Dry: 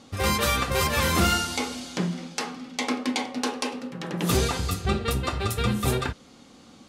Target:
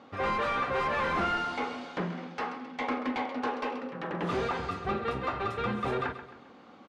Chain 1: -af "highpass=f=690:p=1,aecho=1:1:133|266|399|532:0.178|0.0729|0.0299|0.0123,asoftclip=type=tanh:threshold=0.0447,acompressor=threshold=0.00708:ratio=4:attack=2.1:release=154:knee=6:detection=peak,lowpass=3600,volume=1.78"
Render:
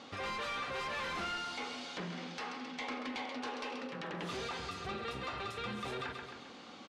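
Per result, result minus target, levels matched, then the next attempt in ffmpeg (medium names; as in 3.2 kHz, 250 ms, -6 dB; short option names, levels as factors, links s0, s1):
compression: peak gain reduction +12 dB; 4 kHz band +8.5 dB
-af "highpass=f=690:p=1,aecho=1:1:133|266|399|532:0.178|0.0729|0.0299|0.0123,asoftclip=type=tanh:threshold=0.0447,lowpass=3600,volume=1.78"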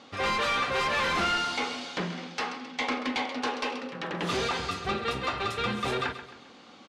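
4 kHz band +8.5 dB
-af "highpass=f=690:p=1,aecho=1:1:133|266|399|532:0.178|0.0729|0.0299|0.0123,asoftclip=type=tanh:threshold=0.0447,lowpass=1600,volume=1.78"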